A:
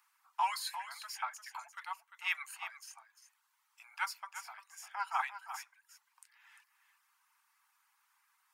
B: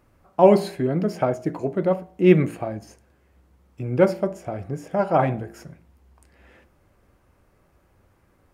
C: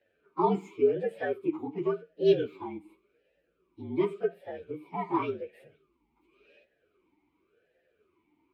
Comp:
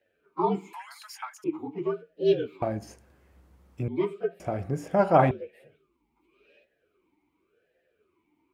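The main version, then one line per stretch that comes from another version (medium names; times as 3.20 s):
C
0.73–1.44 s: from A
2.62–3.88 s: from B
4.40–5.31 s: from B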